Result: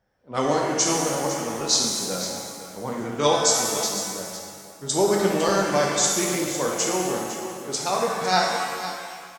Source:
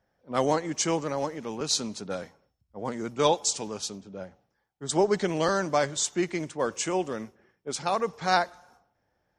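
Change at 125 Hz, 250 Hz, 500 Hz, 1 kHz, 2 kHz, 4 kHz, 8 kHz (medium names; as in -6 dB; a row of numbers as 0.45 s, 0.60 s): +3.5 dB, +4.0 dB, +4.0 dB, +4.5 dB, +5.0 dB, +7.5 dB, +9.0 dB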